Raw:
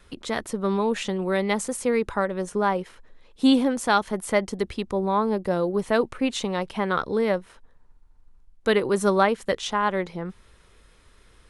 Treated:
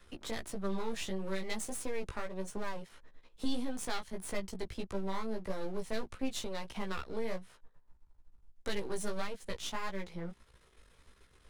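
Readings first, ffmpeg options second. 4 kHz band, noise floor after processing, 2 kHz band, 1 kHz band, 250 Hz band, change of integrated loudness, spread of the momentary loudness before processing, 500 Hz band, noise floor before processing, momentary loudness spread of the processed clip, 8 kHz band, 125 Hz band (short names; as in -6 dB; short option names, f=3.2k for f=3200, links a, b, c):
-11.0 dB, -65 dBFS, -14.5 dB, -17.5 dB, -15.5 dB, -15.5 dB, 9 LU, -16.0 dB, -56 dBFS, 5 LU, -8.0 dB, -12.5 dB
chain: -filter_complex "[0:a]aeval=exprs='if(lt(val(0),0),0.251*val(0),val(0))':c=same,asplit=2[a][b];[b]alimiter=limit=-16dB:level=0:latency=1:release=410,volume=2.5dB[c];[a][c]amix=inputs=2:normalize=0,acrossover=split=160|3000[d][e][f];[e]acompressor=threshold=-30dB:ratio=2.5[g];[d][g][f]amix=inputs=3:normalize=0,flanger=delay=15:depth=3:speed=1.6,volume=-8dB"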